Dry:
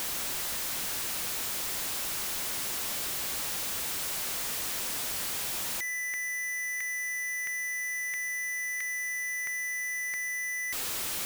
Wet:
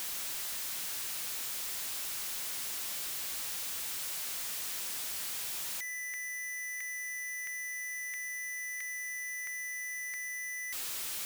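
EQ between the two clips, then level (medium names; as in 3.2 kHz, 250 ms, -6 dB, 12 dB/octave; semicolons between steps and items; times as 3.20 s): tilt shelf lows -4 dB, about 1.2 kHz; -8.0 dB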